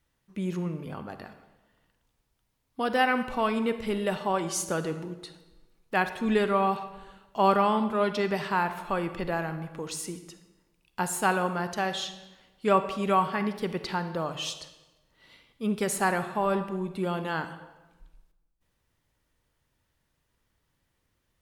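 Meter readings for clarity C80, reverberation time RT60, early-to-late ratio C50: 13.0 dB, 1.1 s, 11.0 dB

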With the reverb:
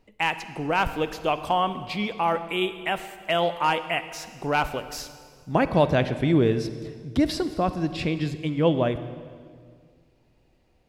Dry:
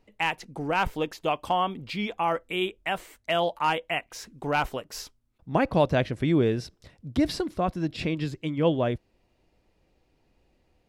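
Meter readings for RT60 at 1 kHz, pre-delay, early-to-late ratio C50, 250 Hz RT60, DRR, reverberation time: 1.8 s, 39 ms, 12.0 dB, 2.4 s, 11.5 dB, 1.9 s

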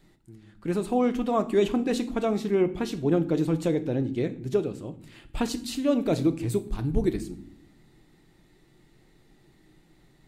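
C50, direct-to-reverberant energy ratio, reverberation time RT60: 16.0 dB, 9.5 dB, not exponential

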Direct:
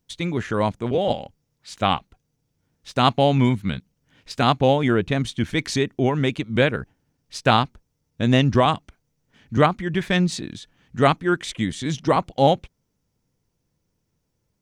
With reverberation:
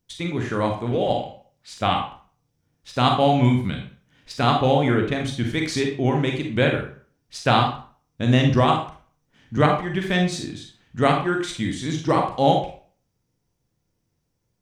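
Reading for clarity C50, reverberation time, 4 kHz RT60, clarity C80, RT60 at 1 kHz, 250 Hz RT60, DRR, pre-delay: 6.0 dB, 0.45 s, 0.35 s, 10.5 dB, 0.45 s, 0.40 s, 2.0 dB, 32 ms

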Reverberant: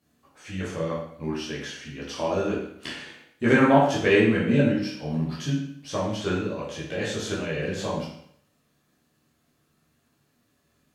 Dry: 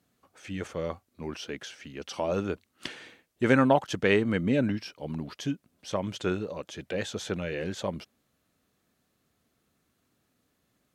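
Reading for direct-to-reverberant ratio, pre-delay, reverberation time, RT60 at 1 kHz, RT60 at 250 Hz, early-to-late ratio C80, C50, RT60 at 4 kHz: -7.0 dB, 12 ms, 0.65 s, 0.70 s, 0.65 s, 6.5 dB, 2.5 dB, 0.60 s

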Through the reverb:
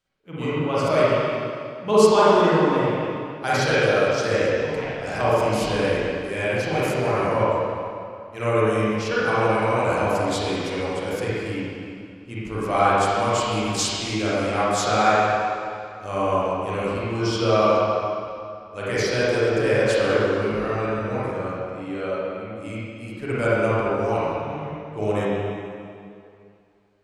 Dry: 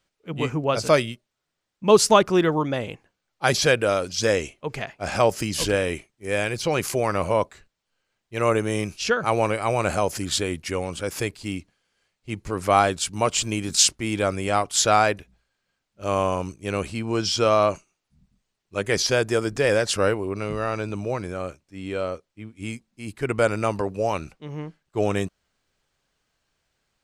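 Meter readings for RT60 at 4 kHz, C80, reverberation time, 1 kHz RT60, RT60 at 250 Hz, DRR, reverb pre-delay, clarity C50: 2.1 s, -3.0 dB, 2.5 s, 2.5 s, 2.4 s, -10.0 dB, 33 ms, -7.0 dB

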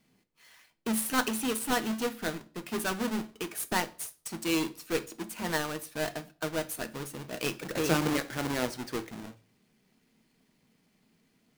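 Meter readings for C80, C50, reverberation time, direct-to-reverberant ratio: 24.0 dB, 19.0 dB, 0.45 s, 10.0 dB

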